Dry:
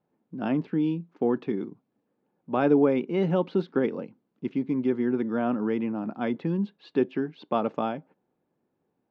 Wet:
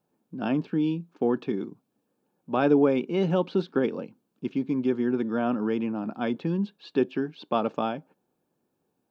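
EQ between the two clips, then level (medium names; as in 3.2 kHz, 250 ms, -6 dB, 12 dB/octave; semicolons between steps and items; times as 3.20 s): treble shelf 3.4 kHz +9.5 dB; band-stop 2 kHz, Q 7; 0.0 dB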